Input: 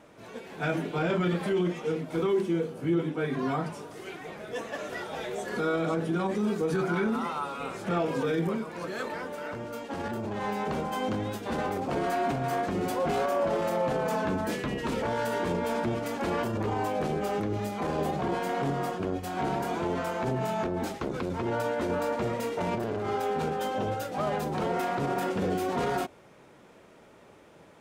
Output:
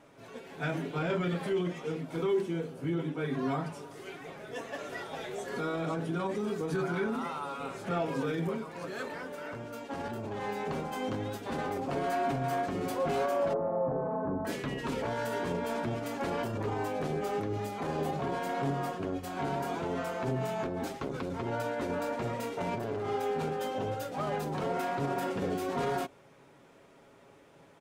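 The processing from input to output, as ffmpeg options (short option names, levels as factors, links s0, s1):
-filter_complex "[0:a]asettb=1/sr,asplit=3[s0][s1][s2];[s0]atrim=end=13.534[s3];[s1]atrim=start=13.53:end=14.45,asetpts=PTS-STARTPTS,afade=t=in:d=0.004:c=qsin,afade=t=out:st=0.916:d=0.004:c=qsin,lowpass=f=1100:w=0.5412,lowpass=f=1100:w=1.3066[s4];[s2]atrim=start=14.446[s5];[s3][s4]acrossfade=d=0.004:c1=hsin:c2=qsin[s6];[s6][s5]acrossfade=d=0.004:c1=qsin:c2=hsin,aecho=1:1:7.3:0.38,volume=0.631"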